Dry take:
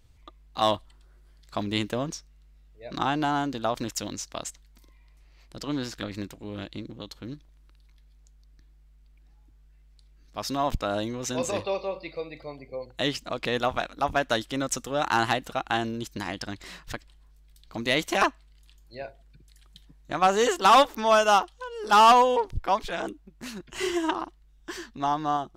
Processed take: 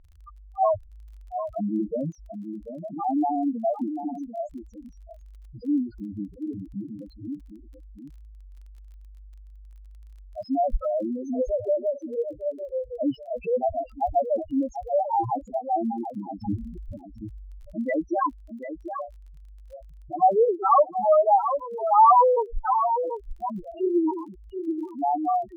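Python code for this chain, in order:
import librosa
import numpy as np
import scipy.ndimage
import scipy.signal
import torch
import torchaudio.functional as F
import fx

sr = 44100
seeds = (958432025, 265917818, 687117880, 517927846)

p1 = fx.low_shelf(x, sr, hz=420.0, db=10.5, at=(16.43, 16.85))
p2 = p1 + fx.echo_single(p1, sr, ms=740, db=-9.0, dry=0)
p3 = fx.spec_topn(p2, sr, count=2)
p4 = scipy.signal.sosfilt(scipy.signal.butter(2, 2300.0, 'lowpass', fs=sr, output='sos'), p3)
p5 = fx.dmg_crackle(p4, sr, seeds[0], per_s=22.0, level_db=-54.0)
p6 = fx.rider(p5, sr, range_db=3, speed_s=0.5)
p7 = p5 + (p6 * librosa.db_to_amplitude(-1.0))
p8 = fx.record_warp(p7, sr, rpm=33.33, depth_cents=100.0)
y = p8 * librosa.db_to_amplitude(1.0)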